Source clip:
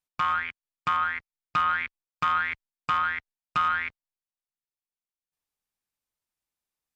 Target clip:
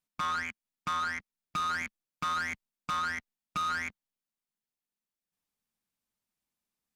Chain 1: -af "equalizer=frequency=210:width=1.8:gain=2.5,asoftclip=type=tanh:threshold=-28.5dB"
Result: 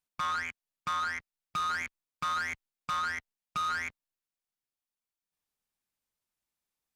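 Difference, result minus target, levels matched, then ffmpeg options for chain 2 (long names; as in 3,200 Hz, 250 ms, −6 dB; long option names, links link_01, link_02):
250 Hz band −5.5 dB
-af "equalizer=frequency=210:width=1.8:gain=10.5,asoftclip=type=tanh:threshold=-28.5dB"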